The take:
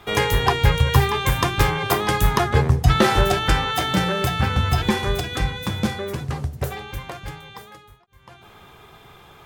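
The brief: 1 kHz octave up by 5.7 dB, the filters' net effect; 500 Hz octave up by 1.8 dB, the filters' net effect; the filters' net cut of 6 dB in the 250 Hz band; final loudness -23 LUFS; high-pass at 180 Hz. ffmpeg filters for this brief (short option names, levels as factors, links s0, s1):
-af "highpass=180,equalizer=f=250:t=o:g=-8.5,equalizer=f=500:t=o:g=3.5,equalizer=f=1000:t=o:g=7,volume=0.668"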